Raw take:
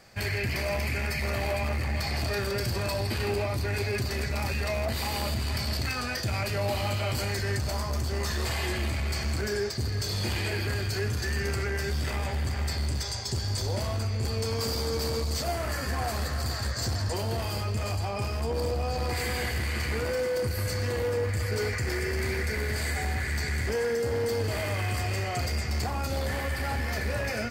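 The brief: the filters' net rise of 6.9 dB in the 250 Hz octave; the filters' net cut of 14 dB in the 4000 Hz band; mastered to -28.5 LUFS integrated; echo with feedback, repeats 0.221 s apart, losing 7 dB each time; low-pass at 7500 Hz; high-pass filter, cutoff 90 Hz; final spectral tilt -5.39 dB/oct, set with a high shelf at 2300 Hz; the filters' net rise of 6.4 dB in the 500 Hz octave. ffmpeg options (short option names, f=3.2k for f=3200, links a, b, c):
-af "highpass=90,lowpass=7.5k,equalizer=f=250:t=o:g=7.5,equalizer=f=500:t=o:g=6,highshelf=f=2.3k:g=-8.5,equalizer=f=4k:t=o:g=-9,aecho=1:1:221|442|663|884|1105:0.447|0.201|0.0905|0.0407|0.0183,volume=-1dB"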